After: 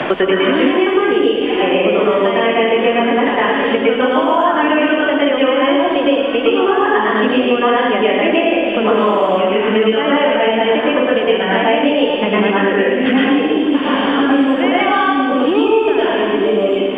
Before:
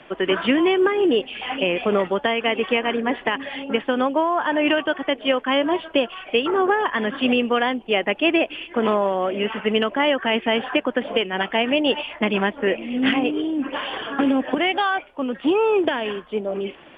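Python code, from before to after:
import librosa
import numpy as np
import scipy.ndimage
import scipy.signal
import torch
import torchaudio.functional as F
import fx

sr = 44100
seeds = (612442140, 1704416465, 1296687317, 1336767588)

y = fx.high_shelf(x, sr, hz=2900.0, db=-9.0)
y = fx.hum_notches(y, sr, base_hz=60, count=4)
y = fx.echo_split(y, sr, split_hz=410.0, low_ms=768, high_ms=110, feedback_pct=52, wet_db=-9.0)
y = fx.rev_plate(y, sr, seeds[0], rt60_s=0.87, hf_ratio=0.95, predelay_ms=95, drr_db=-7.5)
y = fx.band_squash(y, sr, depth_pct=100)
y = y * 10.0 ** (-1.0 / 20.0)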